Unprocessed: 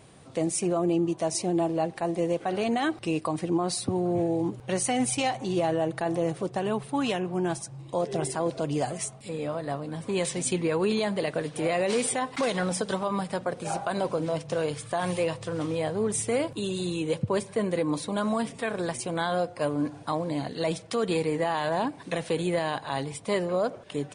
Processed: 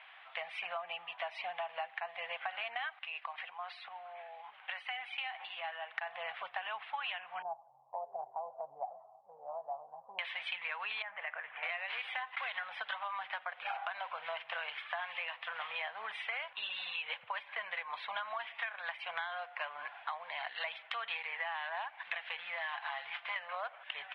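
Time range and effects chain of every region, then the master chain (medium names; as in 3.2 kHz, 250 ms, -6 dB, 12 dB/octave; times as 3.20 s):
2.95–5.96 s: bass shelf 290 Hz -12 dB + compression 2:1, threshold -40 dBFS
7.42–10.19 s: steep low-pass 890 Hz 48 dB/octave + tape noise reduction on one side only decoder only
11.02–11.63 s: low-pass 2.3 kHz 24 dB/octave + compression 2:1, threshold -37 dBFS
22.37–23.36 s: CVSD coder 32 kbps + comb 5.8 ms, depth 48% + compression 2:1, threshold -33 dBFS
whole clip: elliptic band-pass 740–3300 Hz, stop band 40 dB; peaking EQ 2.1 kHz +13.5 dB 1.7 oct; compression 12:1, threshold -32 dBFS; trim -3.5 dB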